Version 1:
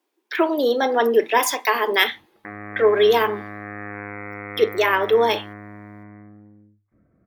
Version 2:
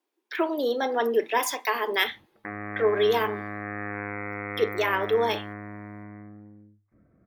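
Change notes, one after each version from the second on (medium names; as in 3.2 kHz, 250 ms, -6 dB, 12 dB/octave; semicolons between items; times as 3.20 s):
speech -6.5 dB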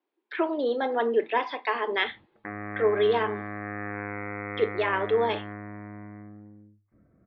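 speech: add steep low-pass 4.6 kHz 48 dB/octave; master: add distance through air 200 m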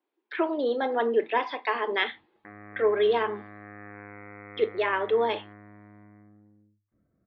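background -10.0 dB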